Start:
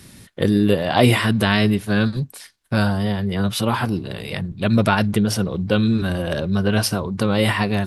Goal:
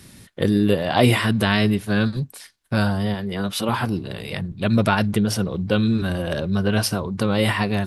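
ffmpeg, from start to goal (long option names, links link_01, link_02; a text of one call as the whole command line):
ffmpeg -i in.wav -filter_complex "[0:a]asettb=1/sr,asplit=3[link_01][link_02][link_03];[link_01]atrim=end=3.144[link_04];[link_02]atrim=start=3.14:end=3.69,asetpts=PTS-STARTPTS,afade=type=in:duration=0.004:curve=qsin,afade=type=out:start_time=0.546:duration=0.004:curve=qsin,equalizer=frequency=120:width_type=o:width=0.61:gain=-14.5[link_05];[link_03]atrim=start=3.686[link_06];[link_04][link_05]acrossfade=duration=0.004:curve1=hsin:curve2=qsin[link_07];[link_07][link_06]acrossfade=duration=0.004:curve1=qsin:curve2=hsin,volume=-1.5dB" out.wav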